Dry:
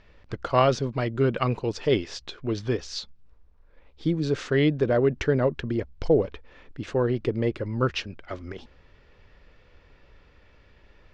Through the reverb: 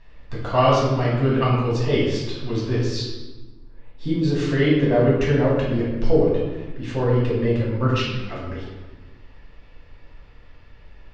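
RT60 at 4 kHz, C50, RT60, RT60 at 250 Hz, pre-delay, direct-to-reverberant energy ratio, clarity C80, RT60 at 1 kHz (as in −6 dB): 0.90 s, 0.5 dB, 1.2 s, 1.8 s, 4 ms, −7.5 dB, 3.0 dB, 1.2 s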